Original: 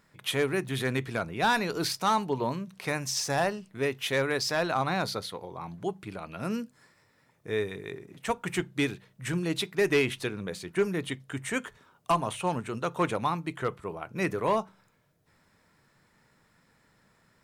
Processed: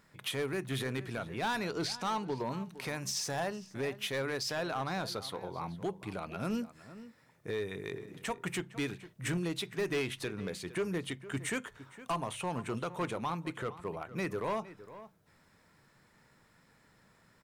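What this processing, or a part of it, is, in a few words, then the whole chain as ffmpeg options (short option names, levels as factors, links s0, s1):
limiter into clipper: -filter_complex "[0:a]asettb=1/sr,asplit=3[s0][s1][s2];[s0]atrim=end=1.694[s3];[s1]atrim=start=1.69:end=2.35,asetpts=PTS-STARTPTS,afade=t=in:d=0.004:c=qsin,afade=t=out:st=0.656:d=0.004:c=qsin,lowpass=7400[s4];[s2]atrim=start=2.346[s5];[s3][s4]acrossfade=d=0.004:c1=hsin:c2=qsin[s6];[s6][s5]acrossfade=d=0.004:c1=qsin:c2=hsin,alimiter=level_in=1.06:limit=0.0631:level=0:latency=1:release=258,volume=0.944,asoftclip=type=hard:threshold=0.0398,asplit=2[s7][s8];[s8]adelay=460.6,volume=0.178,highshelf=f=4000:g=-10.4[s9];[s7][s9]amix=inputs=2:normalize=0"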